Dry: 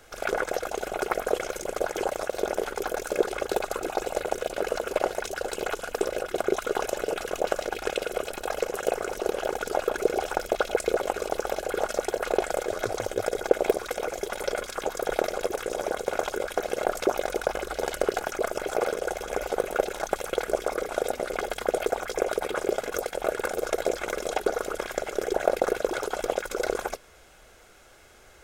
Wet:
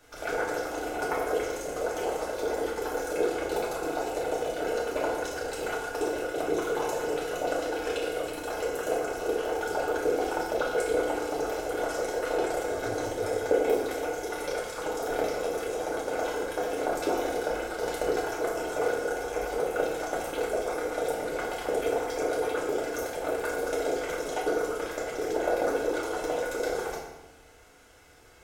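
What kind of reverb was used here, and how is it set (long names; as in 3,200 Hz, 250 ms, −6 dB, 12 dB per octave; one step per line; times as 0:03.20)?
feedback delay network reverb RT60 1 s, low-frequency decay 1.4×, high-frequency decay 0.75×, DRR −5.5 dB
level −8.5 dB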